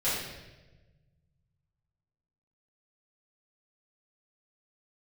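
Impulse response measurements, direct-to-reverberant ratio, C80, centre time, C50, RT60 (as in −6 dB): −13.0 dB, 3.0 dB, 76 ms, 0.0 dB, 1.2 s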